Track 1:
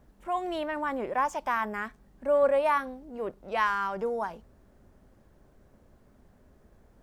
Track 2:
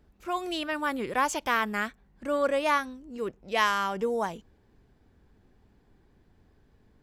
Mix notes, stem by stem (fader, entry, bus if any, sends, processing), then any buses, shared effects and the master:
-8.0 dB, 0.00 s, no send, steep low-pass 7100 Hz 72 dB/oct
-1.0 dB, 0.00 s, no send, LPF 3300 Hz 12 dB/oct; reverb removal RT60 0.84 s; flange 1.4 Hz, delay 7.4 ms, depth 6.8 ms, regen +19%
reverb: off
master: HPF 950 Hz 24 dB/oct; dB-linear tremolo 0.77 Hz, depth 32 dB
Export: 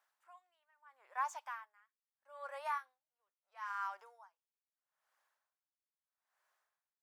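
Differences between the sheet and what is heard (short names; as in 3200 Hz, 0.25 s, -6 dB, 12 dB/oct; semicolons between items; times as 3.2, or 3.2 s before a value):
stem 1: missing steep low-pass 7100 Hz 72 dB/oct; stem 2 -1.0 dB -> -11.0 dB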